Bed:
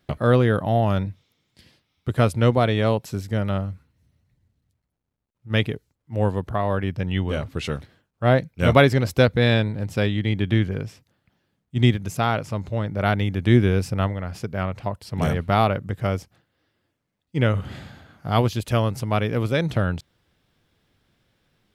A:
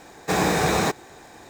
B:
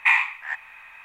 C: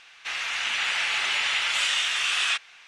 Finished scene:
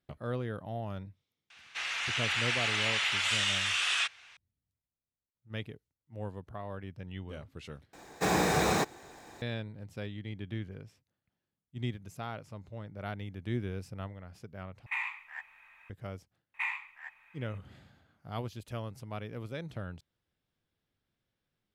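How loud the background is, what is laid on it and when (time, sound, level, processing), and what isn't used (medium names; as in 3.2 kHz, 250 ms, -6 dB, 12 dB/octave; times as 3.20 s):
bed -18 dB
1.50 s: add C -5 dB
7.93 s: replace with A -6 dB + short-mantissa float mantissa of 8-bit
14.86 s: replace with B -13 dB + peak limiter -11 dBFS
16.54 s: add B -16 dB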